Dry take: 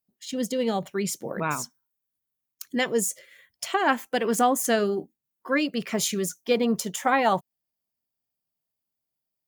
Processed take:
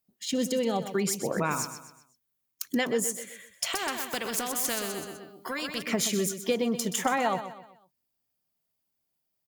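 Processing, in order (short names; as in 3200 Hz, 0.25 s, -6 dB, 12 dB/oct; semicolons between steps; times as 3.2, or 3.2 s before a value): compressor, threshold -28 dBFS, peak gain reduction 11 dB; feedback echo 0.126 s, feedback 40%, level -11 dB; 3.73–5.82 spectral compressor 2:1; gain +4 dB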